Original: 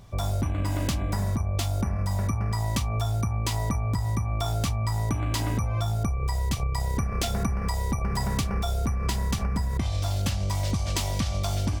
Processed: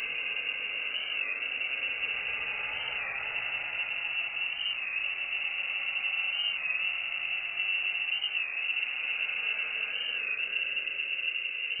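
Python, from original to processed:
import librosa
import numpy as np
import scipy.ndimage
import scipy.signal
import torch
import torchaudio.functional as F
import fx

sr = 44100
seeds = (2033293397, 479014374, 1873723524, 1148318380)

y = np.minimum(x, 2.0 * 10.0 ** (-27.5 / 20.0) - x)
y = fx.highpass(y, sr, hz=79.0, slope=6)
y = fx.peak_eq(y, sr, hz=320.0, db=7.5, octaves=0.23)
y = fx.notch(y, sr, hz=960.0, q=5.2)
y = y + 0.47 * np.pad(y, (int(1.4 * sr / 1000.0), 0))[:len(y)]
y = 10.0 ** (-30.0 / 20.0) * np.tanh(y / 10.0 ** (-30.0 / 20.0))
y = fx.paulstretch(y, sr, seeds[0], factor=29.0, window_s=0.1, from_s=1.04)
y = fx.freq_invert(y, sr, carrier_hz=2800)
y = fx.record_warp(y, sr, rpm=33.33, depth_cents=100.0)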